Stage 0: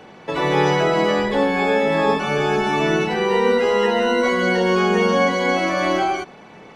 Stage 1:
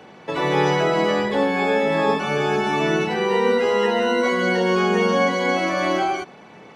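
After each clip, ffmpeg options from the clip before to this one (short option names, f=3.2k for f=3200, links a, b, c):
-af "highpass=74,volume=-1.5dB"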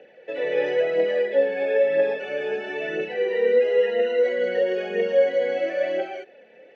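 -filter_complex "[0:a]aphaser=in_gain=1:out_gain=1:delay=4.8:decay=0.43:speed=1:type=triangular,asplit=3[a][b][c];[a]bandpass=f=530:t=q:w=8,volume=0dB[d];[b]bandpass=f=1.84k:t=q:w=8,volume=-6dB[e];[c]bandpass=f=2.48k:t=q:w=8,volume=-9dB[f];[d][e][f]amix=inputs=3:normalize=0,volume=4dB"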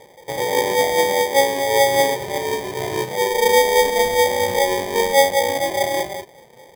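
-af "acrusher=samples=32:mix=1:aa=0.000001,volume=4dB"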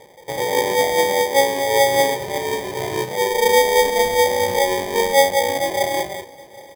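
-af "aecho=1:1:769:0.0794"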